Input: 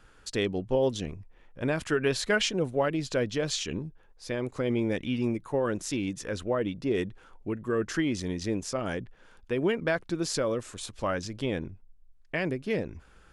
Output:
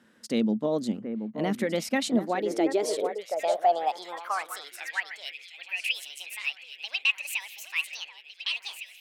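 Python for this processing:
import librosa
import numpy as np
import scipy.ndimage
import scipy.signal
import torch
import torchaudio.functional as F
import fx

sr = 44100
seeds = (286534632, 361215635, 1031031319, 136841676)

y = fx.speed_glide(x, sr, from_pct=111, to_pct=185)
y = fx.echo_alternate(y, sr, ms=729, hz=1800.0, feedback_pct=73, wet_db=-8)
y = fx.filter_sweep_highpass(y, sr, from_hz=220.0, to_hz=2600.0, start_s=2.07, end_s=5.49, q=6.9)
y = y * 10.0 ** (-4.0 / 20.0)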